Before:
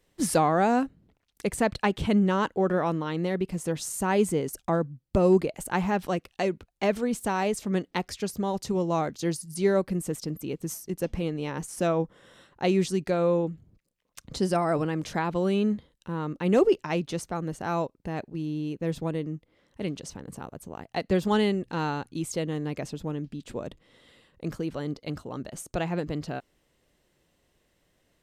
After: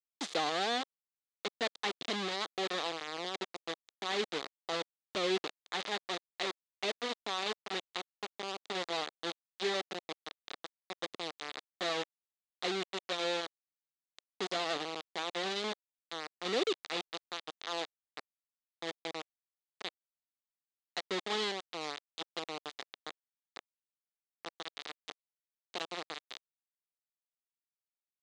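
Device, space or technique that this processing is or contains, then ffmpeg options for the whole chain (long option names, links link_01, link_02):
hand-held game console: -filter_complex "[0:a]asettb=1/sr,asplit=3[link_01][link_02][link_03];[link_01]atrim=end=12.854[link_04];[link_02]atrim=start=12.85:end=13.46,asetpts=PTS-STARTPTS,afade=type=in:duration=0.004:curve=qsin,afade=type=out:start_time=0.606:duration=0.004:curve=qsin,equalizer=frequency=130:width=0.5:gain=-3[link_05];[link_03]atrim=start=13.456[link_06];[link_04][link_05]acrossfade=duration=0.004:curve1=hsin:curve2=qsin[link_07];[link_07][link_06]acrossfade=duration=0.004:curve1=qsin:curve2=hsin,acrusher=bits=3:mix=0:aa=0.000001,highpass=460,equalizer=frequency=590:width_type=q:width=4:gain=-6,equalizer=frequency=940:width_type=q:width=4:gain=-7,equalizer=frequency=1500:width_type=q:width=4:gain=-6,equalizer=frequency=2500:width_type=q:width=4:gain=-3,equalizer=frequency=3700:width_type=q:width=4:gain=6,equalizer=frequency=5500:width_type=q:width=4:gain=-5,lowpass=frequency=6000:width=0.5412,lowpass=frequency=6000:width=1.3066,volume=-6.5dB"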